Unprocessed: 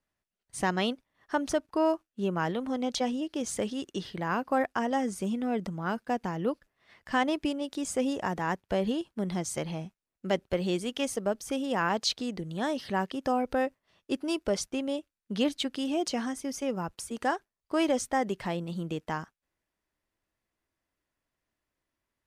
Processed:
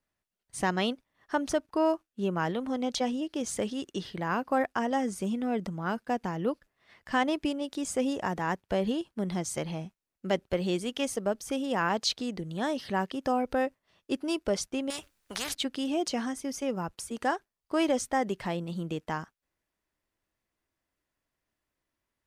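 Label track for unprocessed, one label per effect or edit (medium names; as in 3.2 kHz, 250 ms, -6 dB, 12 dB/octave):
14.900000	15.550000	spectrum-flattening compressor 4:1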